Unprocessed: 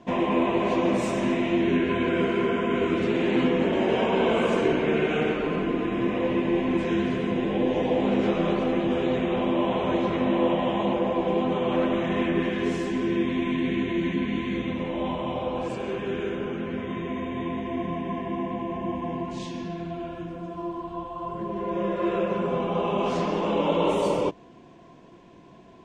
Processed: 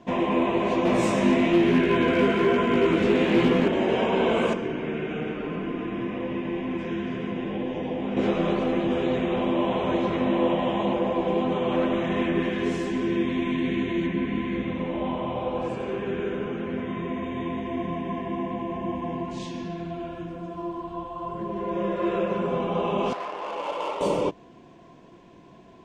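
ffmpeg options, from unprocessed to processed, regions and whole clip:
-filter_complex "[0:a]asettb=1/sr,asplit=3[s0][s1][s2];[s0]atrim=end=0.854[s3];[s1]atrim=start=0.85:end=3.68,asetpts=PTS-STARTPTS,afade=t=in:d=0.004:c=qsin,afade=t=out:st=2.826:d=0.004:c=qsin,acontrast=70,volume=3.76,asoftclip=hard,volume=0.266,flanger=delay=16.5:depth=3.2:speed=1.1[s4];[s2]atrim=start=3.676[s5];[s3][s4]acrossfade=d=0.004:c1=hsin:c2=qsin[s6];[s6][s5]acrossfade=d=0.004:c1=qsin:c2=hsin,asettb=1/sr,asplit=3[s7][s8][s9];[s7]atrim=end=4.534[s10];[s8]atrim=start=4.53:end=8.17,asetpts=PTS-STARTPTS,afade=t=in:d=0.004:c=qsin,afade=t=out:st=3.636:d=0.004:c=qsin,lowpass=5400,bandreject=f=4100:w=5.3,acrossover=split=110|330|680[s11][s12][s13][s14];[s11]acompressor=threshold=0.00316:ratio=3[s15];[s12]acompressor=threshold=0.0316:ratio=3[s16];[s13]acompressor=threshold=0.00891:ratio=3[s17];[s14]acompressor=threshold=0.0112:ratio=3[s18];[s15][s16][s17][s18]amix=inputs=4:normalize=0[s19];[s9]atrim=start=8.166[s20];[s10][s19]acrossfade=d=0.004:c1=hsin:c2=qsin[s21];[s21][s20]acrossfade=d=0.004:c1=qsin:c2=hsin,asettb=1/sr,asplit=3[s22][s23][s24];[s22]atrim=end=14.064[s25];[s23]atrim=start=14.06:end=17.23,asetpts=PTS-STARTPTS,afade=t=in:d=0.004:c=qsin,afade=t=out:st=3.166:d=0.004:c=qsin,acrossover=split=2800[s26][s27];[s27]acompressor=threshold=0.002:ratio=4:attack=1:release=60[s28];[s26][s28]amix=inputs=2:normalize=0,aecho=1:1:87:0.316,atrim=end_sample=139797[s29];[s24]atrim=start=17.226[s30];[s25][s29]acrossfade=d=0.004:c1=hsin:c2=qsin[s31];[s31][s30]acrossfade=d=0.004:c1=qsin:c2=hsin,asettb=1/sr,asplit=3[s32][s33][s34];[s32]atrim=end=23.134[s35];[s33]atrim=start=23.13:end=24.01,asetpts=PTS-STARTPTS,afade=t=in:d=0.004:c=qsin,afade=t=out:st=0.876:d=0.004:c=qsin,highpass=790,lowpass=3800,adynamicsmooth=sensitivity=4.5:basefreq=1500[s36];[s34]atrim=start=24.006[s37];[s35][s36]acrossfade=d=0.004:c1=hsin:c2=qsin[s38];[s38][s37]acrossfade=d=0.004:c1=qsin:c2=hsin"

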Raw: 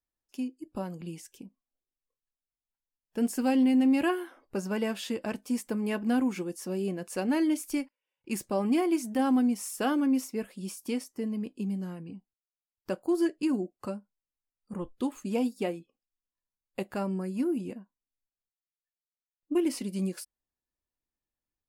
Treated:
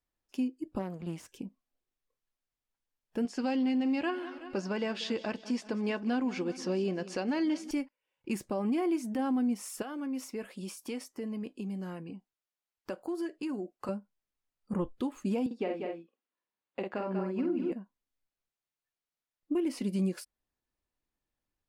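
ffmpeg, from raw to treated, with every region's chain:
-filter_complex "[0:a]asettb=1/sr,asplit=3[s0][s1][s2];[s0]atrim=end=0.794[s3];[s1]atrim=start=0.79:end=1.29,asetpts=PTS-STARTPTS,afade=t=in:d=0.004:c=qsin,afade=t=out:st=0.496:d=0.004:c=qsin,aeval=exprs='if(lt(val(0),0),0.251*val(0),val(0))':c=same,highpass=58[s4];[s2]atrim=start=1.286[s5];[s3][s4]acrossfade=d=0.004:c1=hsin:c2=qsin[s6];[s6][s5]acrossfade=d=0.004:c1=qsin:c2=hsin,asettb=1/sr,asplit=3[s7][s8][s9];[s7]atrim=end=3.254[s10];[s8]atrim=start=3.25:end=7.71,asetpts=PTS-STARTPTS,afade=t=in:d=0.004:c=qsin,afade=t=out:st=4.456:d=0.004:c=qsin,lowpass=f=5100:t=q:w=1.9,lowshelf=f=210:g=-8,aecho=1:1:187|374|561|748|935:0.119|0.0654|0.036|0.0198|0.0109,atrim=end_sample=196686[s11];[s9]atrim=start=7.706[s12];[s10][s11]acrossfade=d=0.004:c1=hsin:c2=qsin[s13];[s13][s12]acrossfade=d=0.004:c1=qsin:c2=hsin,asettb=1/sr,asplit=3[s14][s15][s16];[s14]atrim=end=9.824[s17];[s15]atrim=start=9.82:end=13.89,asetpts=PTS-STARTPTS,afade=t=in:d=0.004:c=qsin,afade=t=out:st=4.066:d=0.004:c=qsin,lowshelf=f=240:g=-11.5,acompressor=threshold=0.01:ratio=3:attack=3.2:release=140:knee=1:detection=peak[s18];[s16]atrim=start=13.886[s19];[s17][s18]acrossfade=d=0.004:c1=hsin:c2=qsin[s20];[s20][s19]acrossfade=d=0.004:c1=qsin:c2=hsin,asettb=1/sr,asplit=3[s21][s22][s23];[s21]atrim=end=15.464[s24];[s22]atrim=start=15.46:end=17.72,asetpts=PTS-STARTPTS,afade=t=in:d=0.004:c=qsin,afade=t=out:st=2.256:d=0.004:c=qsin,highpass=260,lowpass=3500,asplit=2[s25][s26];[s26]adelay=48,volume=0.631[s27];[s25][s27]amix=inputs=2:normalize=0,atrim=end_sample=99666,aecho=1:1:190:0.376,atrim=end_sample=99666[s28];[s23]atrim=start=17.716[s29];[s24][s28]acrossfade=d=0.004:c1=hsin:c2=qsin[s30];[s30][s29]acrossfade=d=0.004:c1=qsin:c2=hsin,aemphasis=mode=reproduction:type=cd,alimiter=level_in=1.68:limit=0.0631:level=0:latency=1:release=333,volume=0.596,volume=1.78"

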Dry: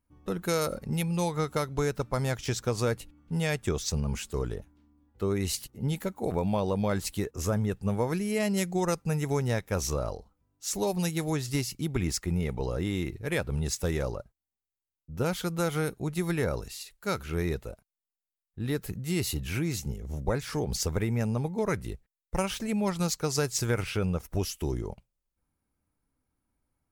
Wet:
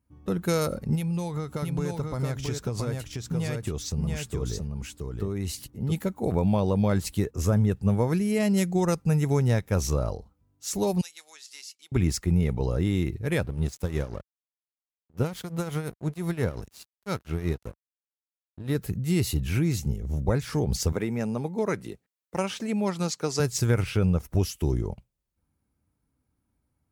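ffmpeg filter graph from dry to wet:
-filter_complex "[0:a]asettb=1/sr,asplit=3[s0][s1][s2];[s0]atrim=end=0.954[s3];[s1]atrim=start=0.95:end=5.92,asetpts=PTS-STARTPTS,afade=t=in:d=0.004:c=qsin,afade=t=out:st=4.966:d=0.004:c=qsin,acompressor=threshold=0.0282:ratio=4:attack=3.2:release=140:knee=1:detection=peak,aecho=1:1:673:0.668,atrim=end_sample=219177[s4];[s2]atrim=start=5.916[s5];[s3][s4]acrossfade=d=0.004:c1=hsin:c2=qsin[s6];[s6][s5]acrossfade=d=0.004:c1=qsin:c2=hsin,asettb=1/sr,asplit=3[s7][s8][s9];[s7]atrim=end=11.014[s10];[s8]atrim=start=11.01:end=11.92,asetpts=PTS-STARTPTS,afade=t=in:d=0.004:c=qsin,afade=t=out:st=0.906:d=0.004:c=qsin,highpass=670,lowpass=5500,aderivative[s11];[s9]atrim=start=11.916[s12];[s10][s11]acrossfade=d=0.004:c1=hsin:c2=qsin[s13];[s13][s12]acrossfade=d=0.004:c1=qsin:c2=hsin,asettb=1/sr,asplit=3[s14][s15][s16];[s14]atrim=end=13.464[s17];[s15]atrim=start=13.46:end=18.75,asetpts=PTS-STARTPTS,afade=t=in:d=0.004:c=qsin,afade=t=out:st=5.286:d=0.004:c=qsin,tremolo=f=5.7:d=0.66,aeval=exprs='sgn(val(0))*max(abs(val(0))-0.00562,0)':c=same[s18];[s16]atrim=start=18.746[s19];[s17][s18]acrossfade=d=0.004:c1=hsin:c2=qsin[s20];[s20][s19]acrossfade=d=0.004:c1=qsin:c2=hsin,asettb=1/sr,asplit=3[s21][s22][s23];[s21]atrim=end=20.924[s24];[s22]atrim=start=20.92:end=23.4,asetpts=PTS-STARTPTS,afade=t=in:d=0.004:c=qsin,afade=t=out:st=2.476:d=0.004:c=qsin,acrossover=split=9100[s25][s26];[s26]acompressor=threshold=0.00112:ratio=4:attack=1:release=60[s27];[s25][s27]amix=inputs=2:normalize=0,highpass=230[s28];[s23]atrim=start=23.396[s29];[s24][s28]acrossfade=d=0.004:c1=hsin:c2=qsin[s30];[s30][s29]acrossfade=d=0.004:c1=qsin:c2=hsin,highpass=54,lowshelf=f=280:g=8.5"

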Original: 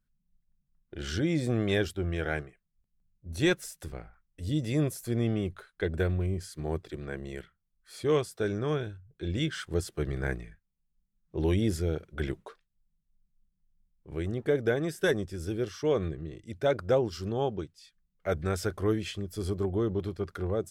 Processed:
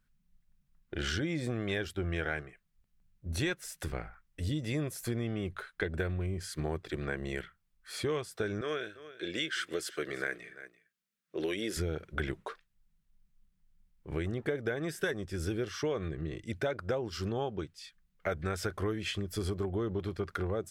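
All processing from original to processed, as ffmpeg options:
-filter_complex "[0:a]asettb=1/sr,asplit=3[s0][s1][s2];[s0]atrim=end=8.614[s3];[s1]atrim=start=8.61:end=11.77,asetpts=PTS-STARTPTS,afade=t=in:d=0.004:c=qsin,afade=t=out:st=3.156:d=0.004:c=qsin,highpass=410,equalizer=f=870:t=o:w=0.46:g=-15,aecho=1:1:339:0.1,atrim=end_sample=139356[s4];[s2]atrim=start=11.766[s5];[s3][s4]acrossfade=d=0.004:c1=hsin:c2=qsin[s6];[s6][s5]acrossfade=d=0.004:c1=qsin:c2=hsin,equalizer=f=1800:w=0.65:g=6,acompressor=threshold=0.02:ratio=6,volume=1.5"

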